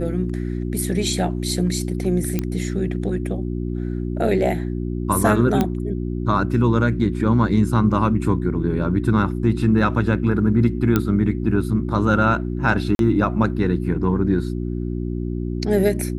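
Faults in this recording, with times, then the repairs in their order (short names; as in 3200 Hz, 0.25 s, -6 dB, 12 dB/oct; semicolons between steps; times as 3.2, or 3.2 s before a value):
hum 60 Hz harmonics 6 -25 dBFS
2.39 pop -9 dBFS
5.61 pop -7 dBFS
10.96 pop -5 dBFS
12.95–12.99 gap 42 ms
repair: de-click; de-hum 60 Hz, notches 6; interpolate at 12.95, 42 ms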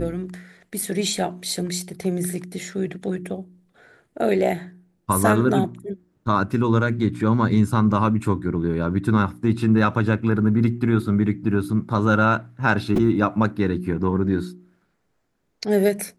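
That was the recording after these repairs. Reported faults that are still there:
5.61 pop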